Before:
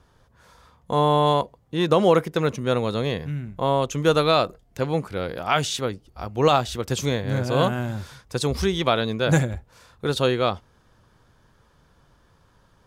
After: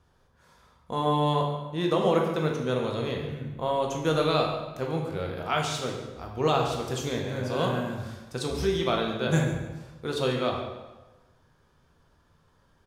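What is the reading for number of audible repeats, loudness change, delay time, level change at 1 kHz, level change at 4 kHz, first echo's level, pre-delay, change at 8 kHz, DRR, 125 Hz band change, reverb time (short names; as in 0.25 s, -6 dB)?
1, -5.0 dB, 0.142 s, -5.0 dB, -5.5 dB, -13.0 dB, 11 ms, -6.0 dB, 0.0 dB, -5.0 dB, 1.1 s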